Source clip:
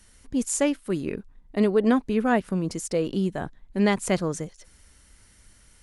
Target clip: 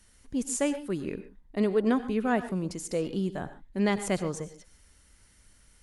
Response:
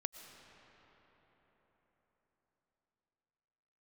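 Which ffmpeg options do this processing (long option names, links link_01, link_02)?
-filter_complex "[1:a]atrim=start_sample=2205,afade=type=out:start_time=0.24:duration=0.01,atrim=end_sample=11025,asetrate=57330,aresample=44100[link_01];[0:a][link_01]afir=irnorm=-1:irlink=0"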